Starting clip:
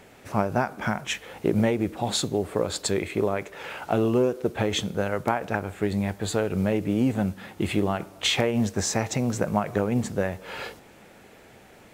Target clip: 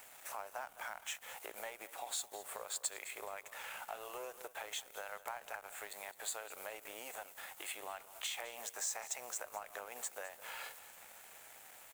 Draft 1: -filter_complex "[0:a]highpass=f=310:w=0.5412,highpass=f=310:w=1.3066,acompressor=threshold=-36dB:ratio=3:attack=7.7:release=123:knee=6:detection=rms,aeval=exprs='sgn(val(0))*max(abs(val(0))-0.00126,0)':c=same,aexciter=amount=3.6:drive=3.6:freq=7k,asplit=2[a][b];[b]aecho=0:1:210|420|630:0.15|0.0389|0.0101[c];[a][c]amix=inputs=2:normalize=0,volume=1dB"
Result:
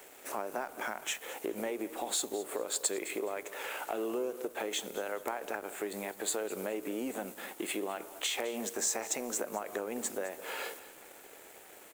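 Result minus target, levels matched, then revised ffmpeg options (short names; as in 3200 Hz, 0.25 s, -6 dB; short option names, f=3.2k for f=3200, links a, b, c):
250 Hz band +16.5 dB; compressor: peak gain reduction -5.5 dB
-filter_complex "[0:a]highpass=f=670:w=0.5412,highpass=f=670:w=1.3066,acompressor=threshold=-46dB:ratio=3:attack=7.7:release=123:knee=6:detection=rms,aeval=exprs='sgn(val(0))*max(abs(val(0))-0.00126,0)':c=same,aexciter=amount=3.6:drive=3.6:freq=7k,asplit=2[a][b];[b]aecho=0:1:210|420|630:0.15|0.0389|0.0101[c];[a][c]amix=inputs=2:normalize=0,volume=1dB"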